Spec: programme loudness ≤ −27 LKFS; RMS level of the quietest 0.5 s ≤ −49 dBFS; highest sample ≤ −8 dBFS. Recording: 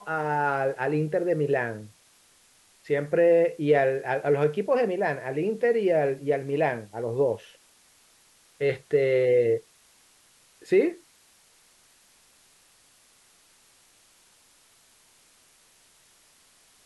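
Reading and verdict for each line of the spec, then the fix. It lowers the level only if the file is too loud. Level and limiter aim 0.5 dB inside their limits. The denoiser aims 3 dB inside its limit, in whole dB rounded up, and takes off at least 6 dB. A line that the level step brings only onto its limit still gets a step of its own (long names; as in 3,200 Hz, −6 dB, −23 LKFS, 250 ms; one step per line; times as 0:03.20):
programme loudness −25.0 LKFS: out of spec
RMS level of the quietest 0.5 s −60 dBFS: in spec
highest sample −10.0 dBFS: in spec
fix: level −2.5 dB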